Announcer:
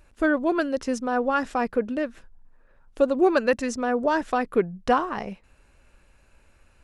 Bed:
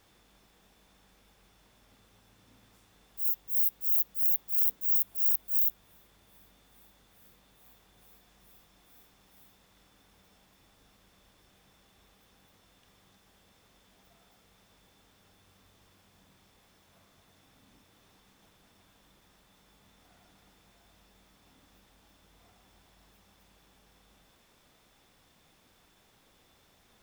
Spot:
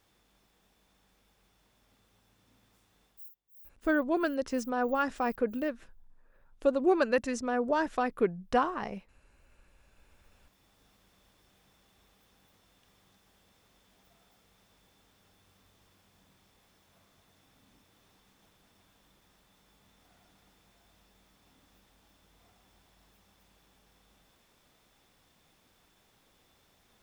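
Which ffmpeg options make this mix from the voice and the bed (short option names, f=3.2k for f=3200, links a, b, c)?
-filter_complex "[0:a]adelay=3650,volume=-5.5dB[a];[1:a]volume=20.5dB,afade=t=out:st=3.05:d=0.24:silence=0.0707946,afade=t=in:st=9.41:d=1.44:silence=0.0501187[b];[a][b]amix=inputs=2:normalize=0"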